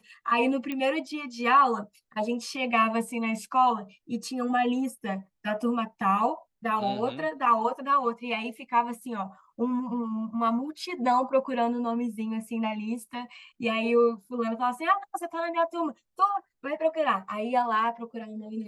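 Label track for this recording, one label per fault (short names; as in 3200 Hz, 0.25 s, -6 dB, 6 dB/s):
0.720000	0.720000	pop -19 dBFS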